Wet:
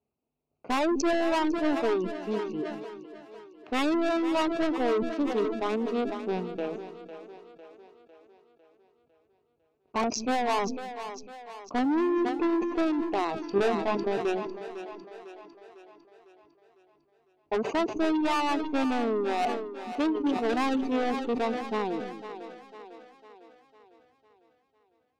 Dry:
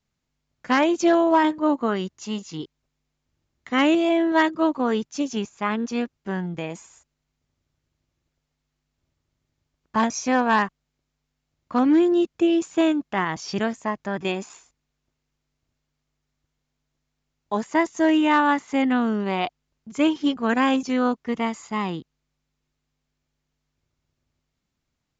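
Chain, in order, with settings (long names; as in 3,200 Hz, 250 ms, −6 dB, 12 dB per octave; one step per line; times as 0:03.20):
adaptive Wiener filter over 25 samples
loudspeaker in its box 110–5,500 Hz, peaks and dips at 120 Hz −10 dB, 170 Hz −9 dB, 420 Hz +9 dB, 720 Hz +6 dB, 1,800 Hz −5 dB, 2,600 Hz +7 dB
soft clipping −22.5 dBFS, distortion −7 dB
reverb reduction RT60 0.51 s
0:13.51–0:14.05: double-tracking delay 20 ms −2.5 dB
echo with a time of its own for lows and highs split 330 Hz, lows 213 ms, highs 502 ms, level −11 dB
level that may fall only so fast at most 51 dB per second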